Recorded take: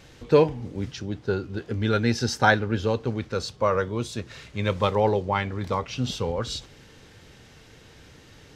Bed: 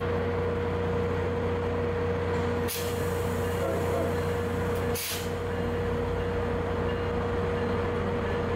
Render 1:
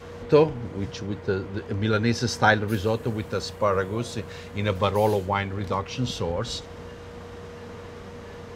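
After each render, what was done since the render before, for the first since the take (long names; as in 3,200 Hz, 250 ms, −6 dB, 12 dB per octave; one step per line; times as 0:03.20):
mix in bed −12 dB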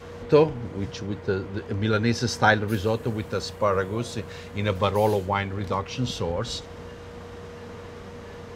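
no processing that can be heard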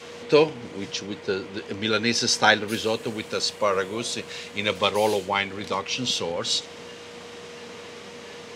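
high-pass filter 210 Hz 12 dB per octave
flat-topped bell 4,600 Hz +9 dB 2.5 octaves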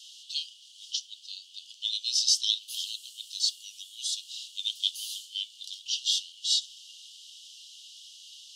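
Chebyshev high-pass filter 2,900 Hz, order 8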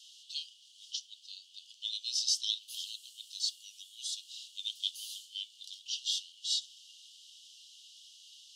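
level −6.5 dB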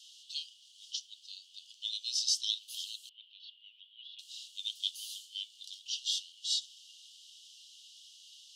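0:03.09–0:04.19: elliptic low-pass filter 3,100 Hz, stop band 60 dB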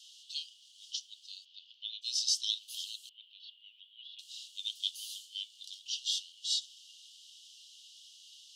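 0:01.44–0:02.01: low-pass filter 4,500 Hz → 3,100 Hz 24 dB per octave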